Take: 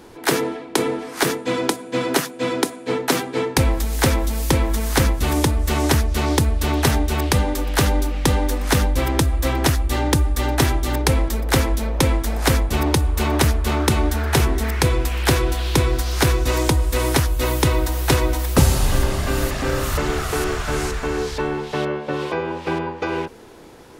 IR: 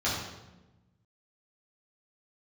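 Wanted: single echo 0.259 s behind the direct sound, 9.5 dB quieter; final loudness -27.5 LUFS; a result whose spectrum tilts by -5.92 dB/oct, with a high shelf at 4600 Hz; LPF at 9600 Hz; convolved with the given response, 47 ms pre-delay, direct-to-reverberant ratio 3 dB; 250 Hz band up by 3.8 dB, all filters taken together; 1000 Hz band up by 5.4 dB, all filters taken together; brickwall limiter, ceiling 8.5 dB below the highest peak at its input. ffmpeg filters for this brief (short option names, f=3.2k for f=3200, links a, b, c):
-filter_complex "[0:a]lowpass=9.6k,equalizer=f=250:t=o:g=4.5,equalizer=f=1k:t=o:g=6.5,highshelf=f=4.6k:g=-4,alimiter=limit=-9.5dB:level=0:latency=1,aecho=1:1:259:0.335,asplit=2[a][b];[1:a]atrim=start_sample=2205,adelay=47[c];[b][c]afir=irnorm=-1:irlink=0,volume=-13.5dB[d];[a][d]amix=inputs=2:normalize=0,volume=-10dB"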